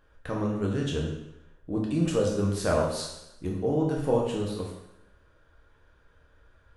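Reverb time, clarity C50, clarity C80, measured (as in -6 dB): 0.85 s, 3.5 dB, 6.0 dB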